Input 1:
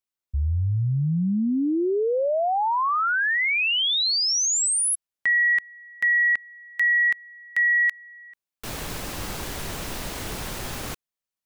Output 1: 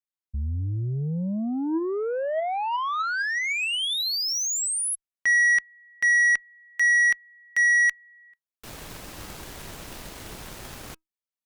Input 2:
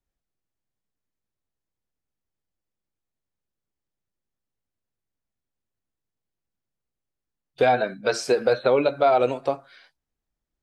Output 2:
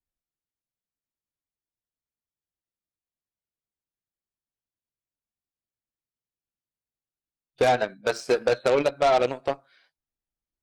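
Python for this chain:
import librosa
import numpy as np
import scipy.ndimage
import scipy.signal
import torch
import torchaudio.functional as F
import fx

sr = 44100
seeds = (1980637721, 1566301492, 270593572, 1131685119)

y = fx.comb_fb(x, sr, f0_hz=320.0, decay_s=0.18, harmonics='all', damping=0.5, mix_pct=30)
y = fx.cheby_harmonics(y, sr, harmonics=(4, 5, 7), levels_db=(-43, -17, -15), full_scale_db=-11.5)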